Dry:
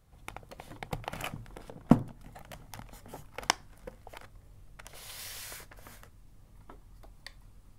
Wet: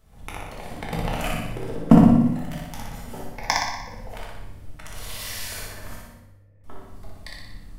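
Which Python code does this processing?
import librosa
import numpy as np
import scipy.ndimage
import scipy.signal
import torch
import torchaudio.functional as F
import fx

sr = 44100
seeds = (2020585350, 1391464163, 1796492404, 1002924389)

y = fx.peak_eq(x, sr, hz=350.0, db=11.5, octaves=0.95, at=(1.44, 1.88))
y = fx.fixed_phaser(y, sr, hz=2000.0, stages=8, at=(3.18, 3.9))
y = fx.formant_cascade(y, sr, vowel='e', at=(5.95, 6.64))
y = fx.echo_feedback(y, sr, ms=60, feedback_pct=57, wet_db=-3.0)
y = fx.room_shoebox(y, sr, seeds[0], volume_m3=270.0, walls='mixed', distance_m=1.5)
y = y * librosa.db_to_amplitude(3.5)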